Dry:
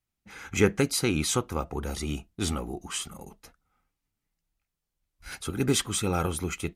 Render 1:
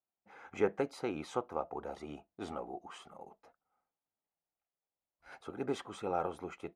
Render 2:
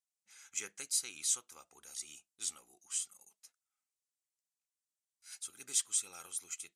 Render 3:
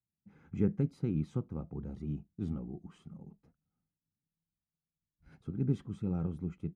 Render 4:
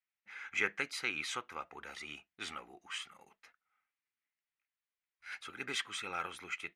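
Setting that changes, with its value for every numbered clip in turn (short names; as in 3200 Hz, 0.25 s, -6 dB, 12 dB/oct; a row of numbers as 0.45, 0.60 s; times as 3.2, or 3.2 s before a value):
band-pass, frequency: 690, 7800, 160, 2000 Hz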